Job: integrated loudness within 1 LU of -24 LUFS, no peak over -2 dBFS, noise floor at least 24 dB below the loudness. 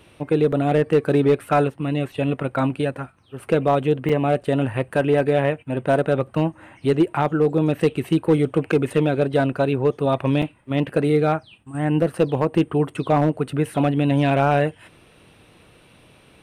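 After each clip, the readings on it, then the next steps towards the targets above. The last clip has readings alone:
clipped 1.1%; flat tops at -9.5 dBFS; dropouts 3; longest dropout 4.8 ms; loudness -21.0 LUFS; peak -9.5 dBFS; loudness target -24.0 LUFS
-> clip repair -9.5 dBFS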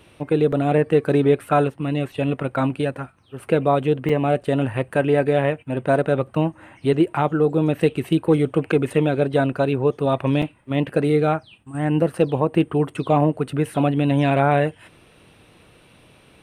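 clipped 0.0%; dropouts 3; longest dropout 4.8 ms
-> interpolate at 0.52/4.09/10.42, 4.8 ms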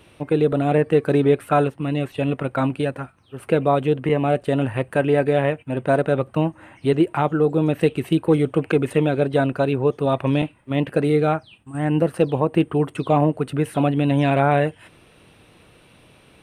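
dropouts 0; loudness -20.5 LUFS; peak -5.0 dBFS; loudness target -24.0 LUFS
-> gain -3.5 dB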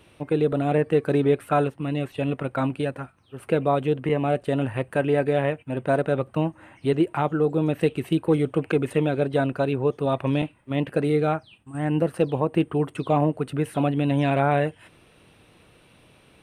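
loudness -24.0 LUFS; peak -8.5 dBFS; noise floor -57 dBFS

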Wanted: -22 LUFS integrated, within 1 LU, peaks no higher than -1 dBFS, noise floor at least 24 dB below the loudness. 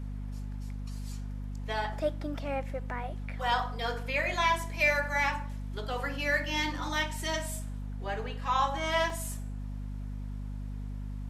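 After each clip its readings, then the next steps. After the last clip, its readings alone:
dropouts 1; longest dropout 2.0 ms; hum 50 Hz; harmonics up to 250 Hz; hum level -35 dBFS; loudness -32.5 LUFS; peak -13.5 dBFS; loudness target -22.0 LUFS
-> interpolate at 9.1, 2 ms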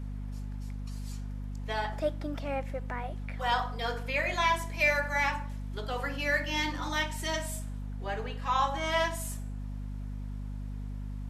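dropouts 0; hum 50 Hz; harmonics up to 250 Hz; hum level -35 dBFS
-> notches 50/100/150/200/250 Hz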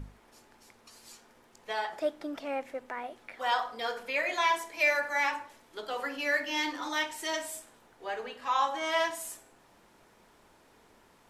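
hum none; loudness -31.5 LUFS; peak -14.5 dBFS; loudness target -22.0 LUFS
-> gain +9.5 dB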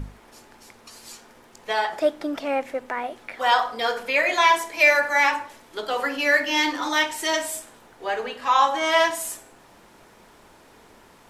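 loudness -22.0 LUFS; peak -5.0 dBFS; noise floor -52 dBFS

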